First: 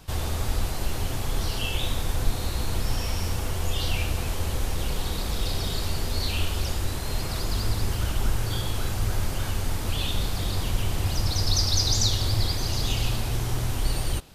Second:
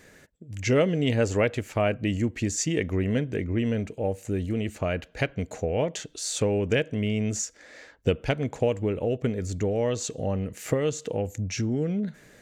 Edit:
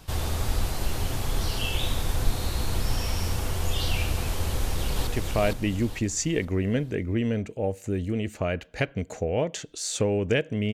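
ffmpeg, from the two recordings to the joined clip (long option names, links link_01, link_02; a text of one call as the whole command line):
ffmpeg -i cue0.wav -i cue1.wav -filter_complex "[0:a]apad=whole_dur=10.73,atrim=end=10.73,atrim=end=5.072[link_01];[1:a]atrim=start=1.478:end=7.14[link_02];[link_01][link_02]acrossfade=duration=0.004:curve1=hsin:curve2=hsin,asplit=2[link_03][link_04];[link_04]afade=type=in:start_time=4.5:duration=0.01,afade=type=out:start_time=5.07:duration=0.01,aecho=0:1:460|920|1380|1840|2300:0.707946|0.283178|0.113271|0.0453085|0.0181234[link_05];[link_03][link_05]amix=inputs=2:normalize=0" out.wav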